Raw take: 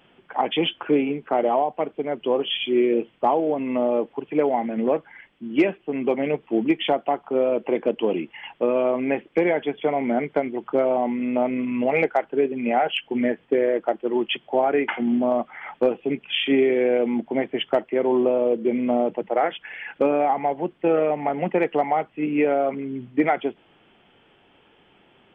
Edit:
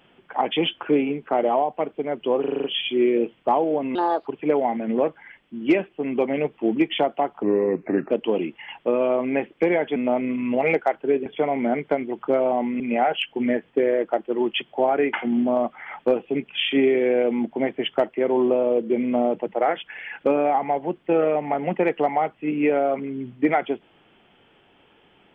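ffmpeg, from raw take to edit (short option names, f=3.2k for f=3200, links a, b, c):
-filter_complex "[0:a]asplit=14[a][b][c][d][e][f][g][h][i][j][k][l][m][n];[a]atrim=end=2.442[o];[b]atrim=start=2.398:end=2.442[p];[c]atrim=start=2.398:end=2.442[q];[d]atrim=start=2.398:end=2.442[r];[e]atrim=start=2.398:end=2.442[s];[f]atrim=start=2.398:end=2.442[t];[g]atrim=start=2.398:end=3.714[u];[h]atrim=start=3.71:end=4.16,asetpts=PTS-STARTPTS,asetrate=62181,aresample=44100,atrim=end_sample=14074,asetpts=PTS-STARTPTS[v];[i]atrim=start=4.156:end=7.324[w];[j]atrim=start=7.32:end=7.85,asetpts=PTS-STARTPTS,asetrate=34839,aresample=44100,atrim=end_sample=29586,asetpts=PTS-STARTPTS[x];[k]atrim=start=7.846:end=9.712[y];[l]atrim=start=11.248:end=12.552[z];[m]atrim=start=9.708:end=11.252[aa];[n]atrim=start=12.548[ab];[o][p]acrossfade=d=0.004:c1=hsin:c2=hsin[ac];[ac][q]acrossfade=d=0.004:c1=hsin:c2=hsin[ad];[ad][r]acrossfade=d=0.004:c1=hsin:c2=hsin[ae];[ae][s]acrossfade=d=0.004:c1=hsin:c2=hsin[af];[af][t]acrossfade=d=0.004:c1=hsin:c2=hsin[ag];[ag][u]acrossfade=d=0.004:c1=hsin:c2=hsin[ah];[ah][v]acrossfade=d=0.004:c1=hsin:c2=hsin[ai];[ai][w]acrossfade=d=0.004:c1=hsin:c2=hsin[aj];[aj][x]acrossfade=d=0.004:c1=hsin:c2=hsin[ak];[ak][y]acrossfade=d=0.004:c1=hsin:c2=hsin[al];[al][z]acrossfade=d=0.004:c1=hsin:c2=hsin[am];[am][aa]acrossfade=d=0.004:c1=hsin:c2=hsin[an];[an][ab]acrossfade=d=0.004:c1=hsin:c2=hsin"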